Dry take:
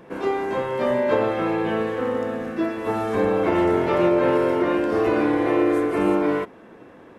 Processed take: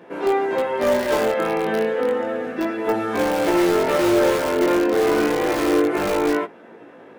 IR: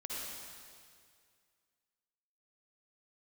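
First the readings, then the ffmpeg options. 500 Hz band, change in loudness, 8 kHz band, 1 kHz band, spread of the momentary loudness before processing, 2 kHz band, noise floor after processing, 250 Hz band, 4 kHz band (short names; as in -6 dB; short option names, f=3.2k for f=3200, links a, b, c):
+2.0 dB, +1.5 dB, n/a, +1.5 dB, 7 LU, +3.5 dB, -44 dBFS, 0.0 dB, +7.5 dB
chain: -filter_complex "[0:a]highpass=130,bass=f=250:g=-6,treble=f=4k:g=-5,bandreject=f=1.1k:w=10,asplit=2[a][b];[b]aeval=exprs='(mod(6.31*val(0)+1,2)-1)/6.31':c=same,volume=-8dB[c];[a][c]amix=inputs=2:normalize=0,flanger=delay=17:depth=6.1:speed=0.3,volume=3.5dB"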